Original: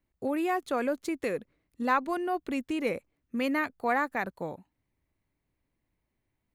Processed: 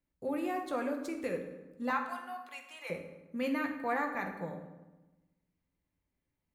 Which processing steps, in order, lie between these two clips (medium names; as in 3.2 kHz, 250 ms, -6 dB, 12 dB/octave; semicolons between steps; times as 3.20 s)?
1.90–2.90 s: high-pass 770 Hz 24 dB/octave; on a send: reverberation RT60 1.1 s, pre-delay 3 ms, DRR 2 dB; on the sum: trim -7.5 dB